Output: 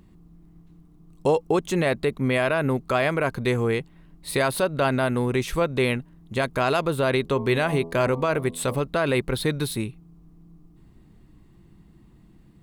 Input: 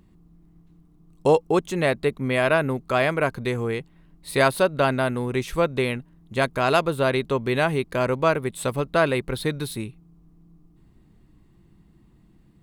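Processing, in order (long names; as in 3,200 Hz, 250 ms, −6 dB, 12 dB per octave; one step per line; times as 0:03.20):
0:07.21–0:08.75: hum removal 83.02 Hz, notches 14
brickwall limiter −15 dBFS, peak gain reduction 9 dB
level +3 dB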